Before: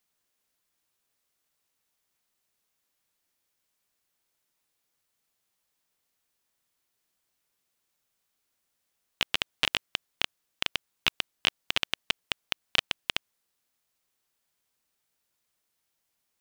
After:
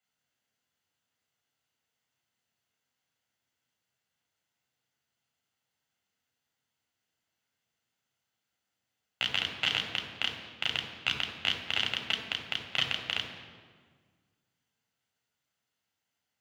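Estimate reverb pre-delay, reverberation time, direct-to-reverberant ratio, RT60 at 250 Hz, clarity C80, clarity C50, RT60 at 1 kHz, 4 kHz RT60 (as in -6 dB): 3 ms, 1.7 s, 0.5 dB, 2.1 s, 7.0 dB, 5.5 dB, 1.6 s, 1.1 s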